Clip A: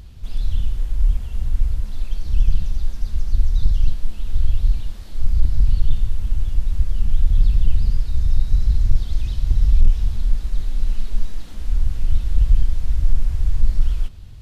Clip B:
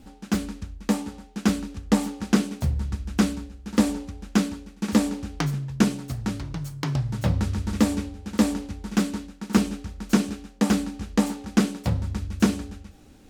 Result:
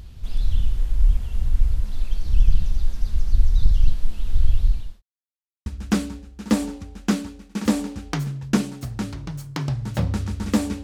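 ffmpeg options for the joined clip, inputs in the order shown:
-filter_complex "[0:a]apad=whole_dur=10.83,atrim=end=10.83,asplit=2[a][b];[a]atrim=end=5.02,asetpts=PTS-STARTPTS,afade=t=out:st=4.45:d=0.57:c=qsin[c];[b]atrim=start=5.02:end=5.66,asetpts=PTS-STARTPTS,volume=0[d];[1:a]atrim=start=2.93:end=8.1,asetpts=PTS-STARTPTS,afade=t=in:d=0.004:c=hsin[e];[c][d][e]concat=n=3:v=0:a=1"

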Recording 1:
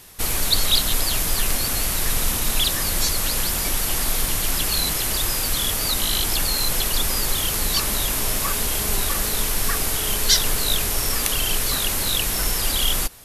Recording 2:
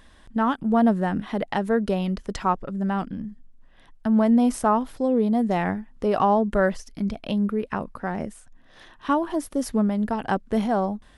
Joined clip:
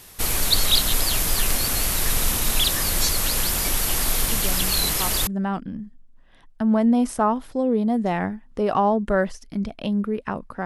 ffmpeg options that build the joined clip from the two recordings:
-filter_complex "[1:a]asplit=2[a][b];[0:a]apad=whole_dur=10.65,atrim=end=10.65,atrim=end=5.272[c];[b]atrim=start=2.718:end=8.1[d];[a]atrim=start=1.77:end=2.72,asetpts=PTS-STARTPTS,volume=-9dB,afade=t=in:d=0.004:c=hsin,afade=t=out:st=0.946:d=0.004:c=hsin,adelay=4320[e];[c][d]acrossfade=d=0.004:c1=hsin:c2=hsin[f];[f][e]amix=inputs=2:normalize=0"

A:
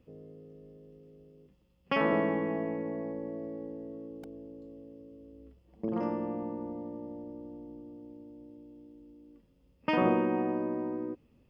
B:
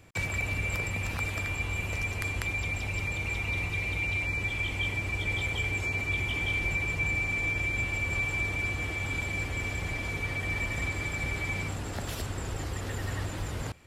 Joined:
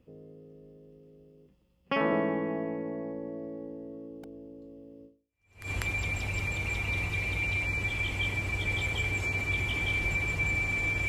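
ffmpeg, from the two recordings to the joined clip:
-filter_complex "[0:a]apad=whole_dur=11.08,atrim=end=11.08,atrim=end=5.71,asetpts=PTS-STARTPTS[a];[1:a]atrim=start=1.65:end=7.68,asetpts=PTS-STARTPTS[b];[a][b]acrossfade=d=0.66:c1=exp:c2=exp"

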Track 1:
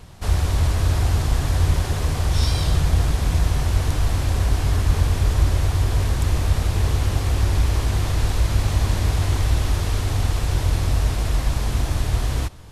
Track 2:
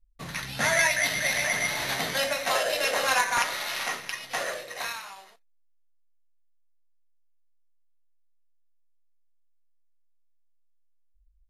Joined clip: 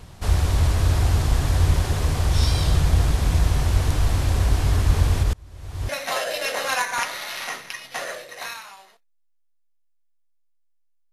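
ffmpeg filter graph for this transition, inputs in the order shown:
-filter_complex "[0:a]asplit=3[a][b][c];[a]afade=t=out:st=5.22:d=0.02[d];[b]aeval=exprs='val(0)*pow(10,-32*if(lt(mod(-1.5*n/s,1),2*abs(-1.5)/1000),1-mod(-1.5*n/s,1)/(2*abs(-1.5)/1000),(mod(-1.5*n/s,1)-2*abs(-1.5)/1000)/(1-2*abs(-1.5)/1000))/20)':c=same,afade=t=in:st=5.22:d=0.02,afade=t=out:st=5.89:d=0.02[e];[c]afade=t=in:st=5.89:d=0.02[f];[d][e][f]amix=inputs=3:normalize=0,apad=whole_dur=11.12,atrim=end=11.12,atrim=end=5.892[g];[1:a]atrim=start=2.278:end=7.51[h];[g][h]acrossfade=d=0.004:c1=hsin:c2=hsin"

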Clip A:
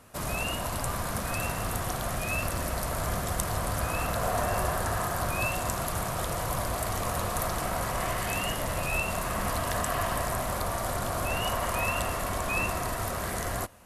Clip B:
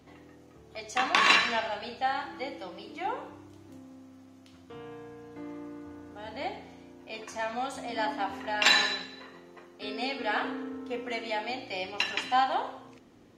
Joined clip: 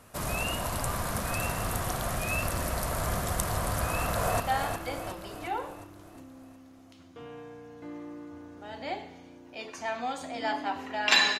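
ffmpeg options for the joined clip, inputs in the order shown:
-filter_complex "[0:a]apad=whole_dur=11.39,atrim=end=11.39,atrim=end=4.402[a];[1:a]atrim=start=1.938:end=8.93[b];[a][b]acrossfade=d=0.004:c1=hsin:c2=hsin,asplit=2[c][d];[d]afade=t=in:st=3.81:d=0.01,afade=t=out:st=4.4:d=0.01,aecho=0:1:360|720|1080|1440|1800|2160|2520:0.501187|0.275653|0.151609|0.083385|0.0458618|0.025224|0.0138732[e];[c][e]amix=inputs=2:normalize=0"

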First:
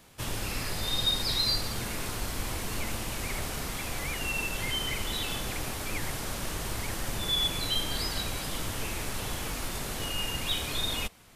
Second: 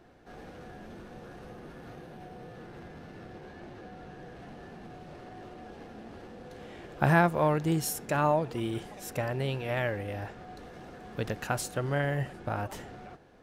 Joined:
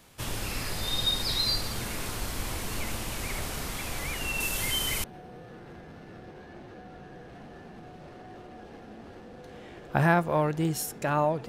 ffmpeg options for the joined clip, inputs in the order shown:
-filter_complex "[0:a]asettb=1/sr,asplit=3[a][b][c];[a]atrim=end=4.404[d];[b]atrim=start=4.4:end=5.04,asetpts=PTS-STARTPTS,afade=t=in:d=0.004:c=qsin,afade=t=out:st=0.636:d=0.004:c=qsin,highshelf=f=6.3k:g=10.5[e];[c]atrim=start=5.036[f];[d][e]acrossfade=d=0.004:c1=hsin:c2=qsin[g];[g][f]acrossfade=d=0.004:c1=qsin:c2=hsin,apad=whole_dur=11.48,atrim=end=11.48,atrim=end=5.042[h];[1:a]atrim=start=2.108:end=8.55[i];[h][i]acrossfade=d=0.004:c1=hsin:c2=hsin"

